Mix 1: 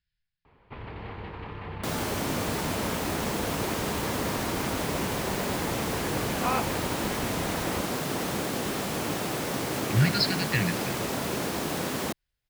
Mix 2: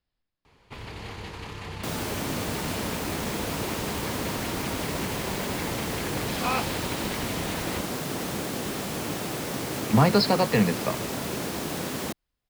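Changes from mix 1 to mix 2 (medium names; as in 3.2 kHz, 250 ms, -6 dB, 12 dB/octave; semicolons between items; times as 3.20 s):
speech: remove brick-wall FIR band-stop 190–1400 Hz; first sound: remove distance through air 440 m; master: add peaking EQ 1 kHz -2.5 dB 2.6 oct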